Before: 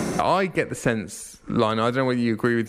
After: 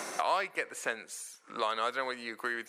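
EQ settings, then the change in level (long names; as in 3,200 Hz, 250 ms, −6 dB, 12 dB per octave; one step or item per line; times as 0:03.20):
high-pass filter 740 Hz 12 dB per octave
−6.0 dB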